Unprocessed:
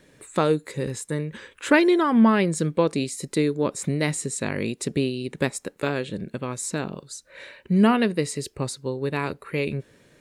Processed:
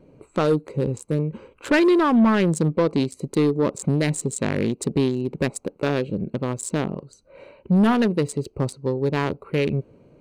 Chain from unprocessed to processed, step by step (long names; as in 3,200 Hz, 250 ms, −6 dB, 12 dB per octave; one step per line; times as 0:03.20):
adaptive Wiener filter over 25 samples
in parallel at 0 dB: brickwall limiter −16 dBFS, peak gain reduction 10 dB
on the sum: soft clipping −11.5 dBFS, distortion −15 dB